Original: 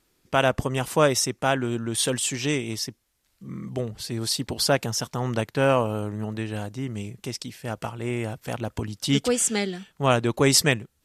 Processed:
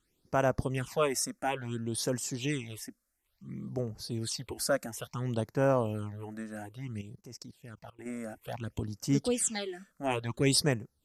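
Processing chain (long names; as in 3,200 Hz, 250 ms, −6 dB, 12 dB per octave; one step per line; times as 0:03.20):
all-pass phaser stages 8, 0.58 Hz, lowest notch 110–3,500 Hz
0:07.01–0:08.06: output level in coarse steps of 20 dB
level −6 dB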